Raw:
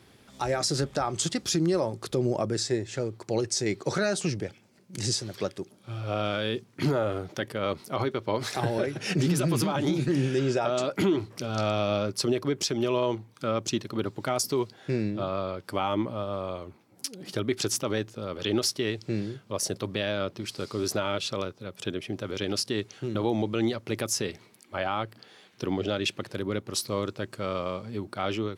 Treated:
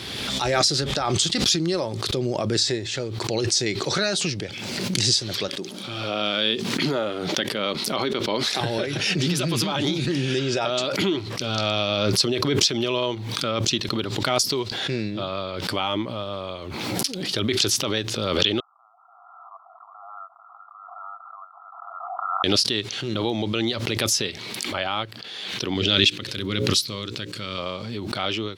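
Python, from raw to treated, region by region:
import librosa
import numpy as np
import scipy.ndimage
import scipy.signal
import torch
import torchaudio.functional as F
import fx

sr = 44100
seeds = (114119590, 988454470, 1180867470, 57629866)

y = fx.chain(x, sr, fx.low_shelf_res(hz=130.0, db=-12.0, q=1.5),
    fx.sustainer(db_per_s=120.0), at=(5.48, 8.61))
y = fx.chain(y, sr, fx.brickwall_bandpass(low_hz=670.0, high_hz=1400.0),
    fx.peak_eq(hz=910.0, db=-12.5, octaves=0.58), at=(18.6, 22.44))
y = fx.chain(y, sr, fx.peak_eq(hz=700.0, db=-10.5, octaves=1.5),
    fx.hum_notches(base_hz=60, count=9), at=(25.74, 27.58))
y = fx.peak_eq(y, sr, hz=3700.0, db=12.5, octaves=1.4)
y = fx.pre_swell(y, sr, db_per_s=28.0)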